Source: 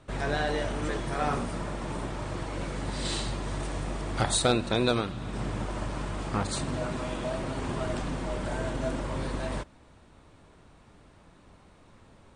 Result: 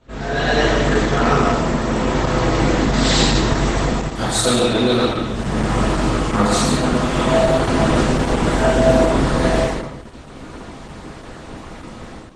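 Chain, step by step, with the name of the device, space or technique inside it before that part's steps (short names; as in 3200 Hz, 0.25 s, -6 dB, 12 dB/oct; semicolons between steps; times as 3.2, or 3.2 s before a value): 3.8–4.56 high shelf 8400 Hz +3.5 dB; non-linear reverb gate 80 ms flat, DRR -5.5 dB; speakerphone in a meeting room (reverb RT60 0.90 s, pre-delay 75 ms, DRR 1 dB; AGC gain up to 15.5 dB; gain -1.5 dB; Opus 12 kbps 48000 Hz)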